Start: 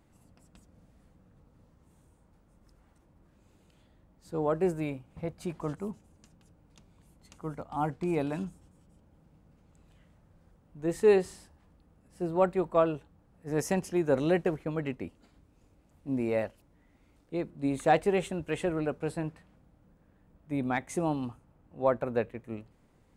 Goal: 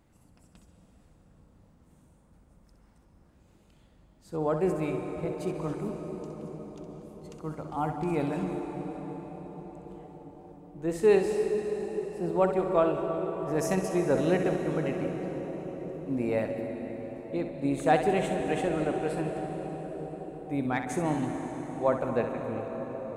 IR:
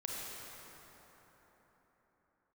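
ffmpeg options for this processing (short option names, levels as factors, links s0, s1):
-filter_complex "[0:a]asplit=2[s0][s1];[1:a]atrim=start_sample=2205,asetrate=24255,aresample=44100,adelay=64[s2];[s1][s2]afir=irnorm=-1:irlink=0,volume=0.376[s3];[s0][s3]amix=inputs=2:normalize=0"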